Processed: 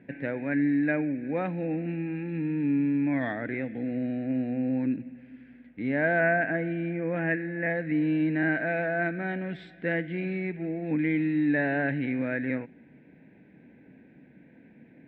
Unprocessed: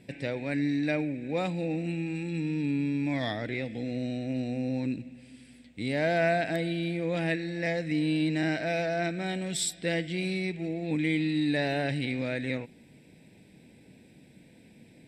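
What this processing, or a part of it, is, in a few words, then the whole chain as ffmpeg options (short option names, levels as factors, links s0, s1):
bass cabinet: -filter_complex "[0:a]highpass=63,equalizer=f=100:t=q:w=4:g=-9,equalizer=f=270:t=q:w=4:g=5,equalizer=f=1600:t=q:w=4:g=9,lowpass=f=2200:w=0.5412,lowpass=f=2200:w=1.3066,asettb=1/sr,asplit=3[s0][s1][s2];[s0]atrim=end=6.204[s3];[s1]atrim=start=6.2:end=7.7,asetpts=PTS-STARTPTS,afade=t=in:d=0.004:c=qsin,afade=t=out:st=1.496:d=0.004:c=qsin,lowpass=f=3000:w=0.5412,lowpass=f=3000:w=1.3066[s4];[s2]atrim=start=7.696[s5];[s3][s4]acrossfade=d=0.004:c1=hsin:c2=qsin[s6];[s6][s5]acrossfade=d=0.004:c1=qsin:c2=hsin"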